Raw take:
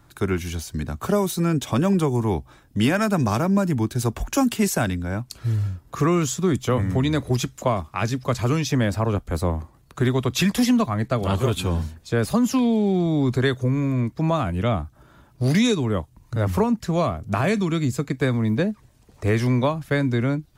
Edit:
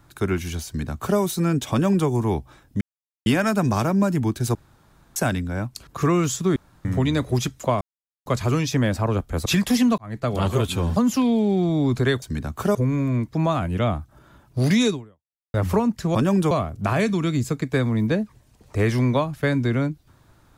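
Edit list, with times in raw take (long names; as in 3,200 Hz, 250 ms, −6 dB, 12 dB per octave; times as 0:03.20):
0:00.66–0:01.19: duplicate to 0:13.59
0:01.72–0:02.08: duplicate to 0:16.99
0:02.81: splice in silence 0.45 s
0:04.10–0:04.71: fill with room tone
0:05.42–0:05.85: remove
0:06.54–0:06.83: fill with room tone
0:07.79–0:08.24: silence
0:09.44–0:10.34: remove
0:10.86–0:11.20: fade in
0:11.84–0:12.33: remove
0:15.76–0:16.38: fade out exponential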